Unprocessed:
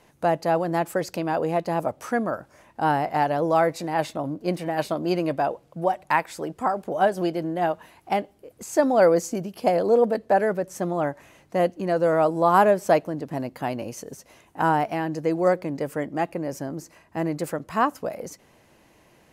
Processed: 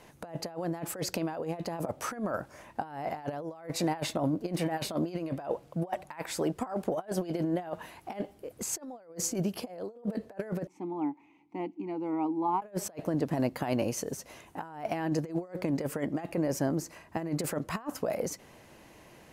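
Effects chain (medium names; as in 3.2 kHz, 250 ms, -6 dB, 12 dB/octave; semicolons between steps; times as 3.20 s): 10.67–12.62 s: vowel filter u; compressor with a negative ratio -29 dBFS, ratio -0.5; trim -3 dB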